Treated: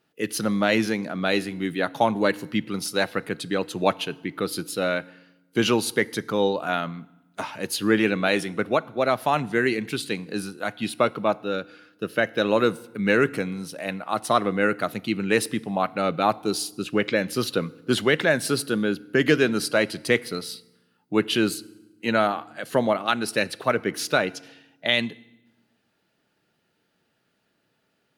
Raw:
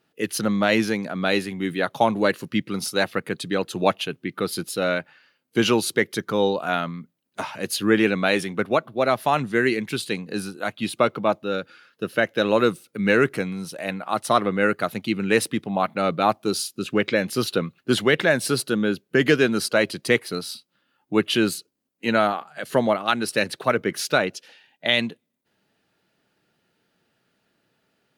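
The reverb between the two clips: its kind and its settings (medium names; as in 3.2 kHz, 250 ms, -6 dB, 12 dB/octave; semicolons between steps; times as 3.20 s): FDN reverb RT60 0.99 s, low-frequency decay 1.5×, high-frequency decay 0.85×, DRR 19 dB; trim -1.5 dB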